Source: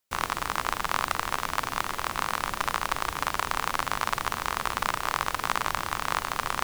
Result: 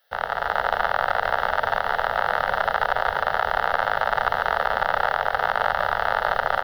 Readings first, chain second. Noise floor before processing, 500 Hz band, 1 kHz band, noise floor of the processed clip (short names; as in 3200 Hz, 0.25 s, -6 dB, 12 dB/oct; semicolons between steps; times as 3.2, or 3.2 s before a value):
-40 dBFS, +13.0 dB, +6.5 dB, -33 dBFS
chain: added noise blue -54 dBFS; echo 0.143 s -6.5 dB; AGC; three-band isolator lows -19 dB, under 440 Hz, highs -15 dB, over 3500 Hz; fixed phaser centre 1600 Hz, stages 8; limiter -13.5 dBFS, peak gain reduction 6.5 dB; tilt shelf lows +8 dB, about 1200 Hz; gain +7.5 dB